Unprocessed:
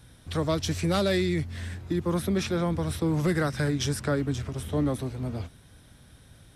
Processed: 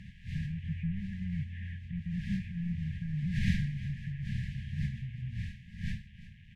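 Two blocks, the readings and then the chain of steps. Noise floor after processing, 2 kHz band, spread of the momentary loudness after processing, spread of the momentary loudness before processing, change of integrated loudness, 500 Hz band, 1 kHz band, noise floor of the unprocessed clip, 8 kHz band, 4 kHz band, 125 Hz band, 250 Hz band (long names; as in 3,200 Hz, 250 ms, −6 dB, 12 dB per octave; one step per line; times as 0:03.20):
−53 dBFS, −9.5 dB, 9 LU, 9 LU, −8.5 dB, below −40 dB, below −40 dB, −54 dBFS, below −20 dB, −15.5 dB, −4.5 dB, −9.0 dB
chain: linear delta modulator 16 kbit/s, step −45.5 dBFS
wind on the microphone 560 Hz −30 dBFS
linear-phase brick-wall band-stop 220–1,600 Hz
single-tap delay 352 ms −16 dB
level −5 dB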